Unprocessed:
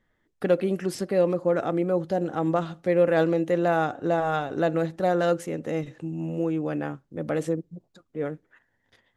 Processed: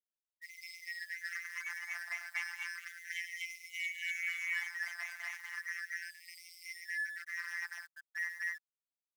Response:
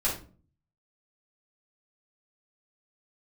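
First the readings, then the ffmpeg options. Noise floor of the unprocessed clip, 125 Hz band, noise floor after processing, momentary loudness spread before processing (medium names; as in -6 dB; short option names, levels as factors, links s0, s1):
-73 dBFS, under -40 dB, under -85 dBFS, 10 LU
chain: -filter_complex "[0:a]afftfilt=real='real(if(lt(b,272),68*(eq(floor(b/68),0)*3+eq(floor(b/68),1)*0+eq(floor(b/68),2)*1+eq(floor(b/68),3)*2)+mod(b,68),b),0)':imag='imag(if(lt(b,272),68*(eq(floor(b/68),0)*3+eq(floor(b/68),1)*0+eq(floor(b/68),2)*1+eq(floor(b/68),3)*2)+mod(b,68),b),0)':win_size=2048:overlap=0.75,afftfilt=real='re*gte(hypot(re,im),0.2)':imag='im*gte(hypot(re,im),0.2)':win_size=1024:overlap=0.75,equalizer=f=125:t=o:w=1:g=-4,equalizer=f=250:t=o:w=1:g=-6,equalizer=f=500:t=o:w=1:g=-6,equalizer=f=1000:t=o:w=1:g=-3,equalizer=f=2000:t=o:w=1:g=-12,equalizer=f=4000:t=o:w=1:g=-9,equalizer=f=8000:t=o:w=1:g=-10,alimiter=level_in=3.16:limit=0.0631:level=0:latency=1:release=186,volume=0.316,asplit=2[s0][s1];[s1]highpass=f=720:p=1,volume=31.6,asoftclip=type=tanh:threshold=0.0211[s2];[s0][s2]amix=inputs=2:normalize=0,lowpass=f=1300:p=1,volume=0.501,tremolo=f=2.8:d=0.63,asplit=2[s3][s4];[s4]aecho=0:1:107.9|244.9:0.282|1[s5];[s3][s5]amix=inputs=2:normalize=0,acrusher=bits=10:mix=0:aa=0.000001,afftfilt=real='hypot(re,im)*cos(PI*b)':imag='0':win_size=1024:overlap=0.75,afftfilt=real='re*gte(b*sr/1024,640*pow(2000/640,0.5+0.5*sin(2*PI*0.34*pts/sr)))':imag='im*gte(b*sr/1024,640*pow(2000/640,0.5+0.5*sin(2*PI*0.34*pts/sr)))':win_size=1024:overlap=0.75,volume=3.35"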